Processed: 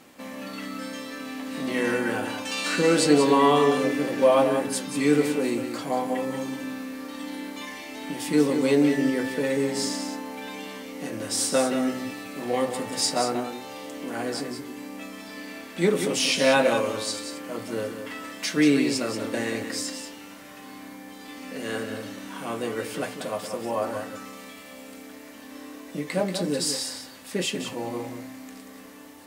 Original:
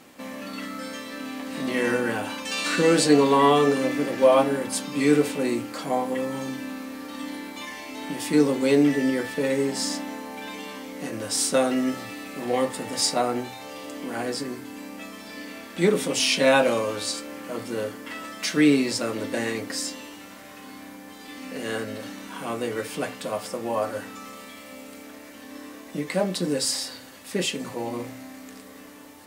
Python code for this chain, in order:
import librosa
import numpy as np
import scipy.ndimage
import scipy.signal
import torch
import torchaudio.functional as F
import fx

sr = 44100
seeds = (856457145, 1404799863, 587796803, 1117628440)

y = x + 10.0 ** (-8.0 / 20.0) * np.pad(x, (int(184 * sr / 1000.0), 0))[:len(x)]
y = y * librosa.db_to_amplitude(-1.5)